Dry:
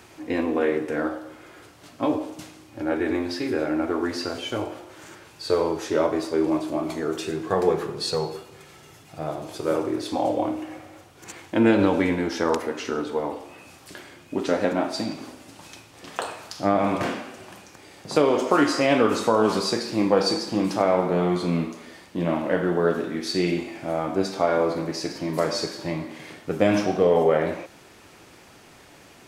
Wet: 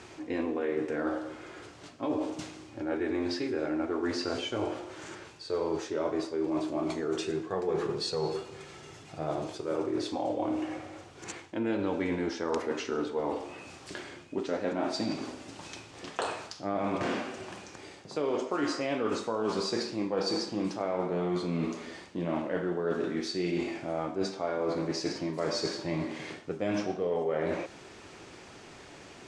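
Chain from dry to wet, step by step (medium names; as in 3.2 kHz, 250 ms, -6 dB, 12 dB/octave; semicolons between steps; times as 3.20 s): low-pass 8.2 kHz 24 dB/octave; peaking EQ 390 Hz +3.5 dB 0.41 oct; reverse; compression 6:1, threshold -28 dBFS, peak gain reduction 15 dB; reverse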